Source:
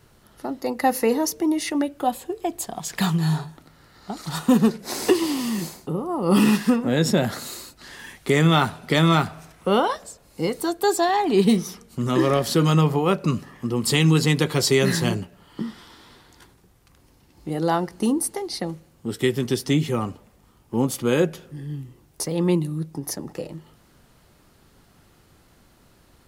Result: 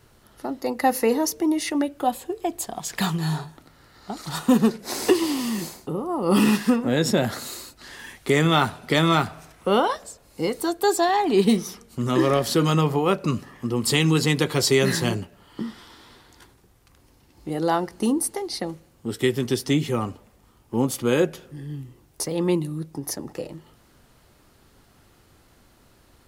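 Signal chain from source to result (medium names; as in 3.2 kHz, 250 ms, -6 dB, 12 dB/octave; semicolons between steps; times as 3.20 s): peaking EQ 170 Hz -5 dB 0.39 oct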